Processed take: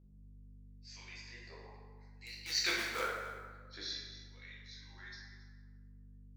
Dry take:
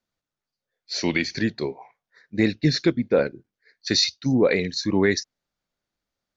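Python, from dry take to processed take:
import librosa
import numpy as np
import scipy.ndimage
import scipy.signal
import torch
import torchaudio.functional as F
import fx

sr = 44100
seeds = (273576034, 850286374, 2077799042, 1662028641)

p1 = fx.doppler_pass(x, sr, speed_mps=24, closest_m=1.8, pass_at_s=2.71)
p2 = fx.dynamic_eq(p1, sr, hz=2500.0, q=0.99, threshold_db=-51.0, ratio=4.0, max_db=-5)
p3 = np.where(np.abs(p2) >= 10.0 ** (-24.5 / 20.0), p2, 0.0)
p4 = p2 + F.gain(torch.from_numpy(p3), -9.0).numpy()
p5 = fx.filter_lfo_highpass(p4, sr, shape='saw_down', hz=0.49, low_hz=460.0, high_hz=3800.0, q=1.1)
p6 = fx.add_hum(p5, sr, base_hz=50, snr_db=14)
p7 = fx.transient(p6, sr, attack_db=-5, sustain_db=1)
p8 = p7 + fx.echo_single(p7, sr, ms=269, db=-17.5, dry=0)
p9 = fx.rev_plate(p8, sr, seeds[0], rt60_s=1.5, hf_ratio=0.55, predelay_ms=0, drr_db=-5.0)
y = F.gain(torch.from_numpy(p9), 1.0).numpy()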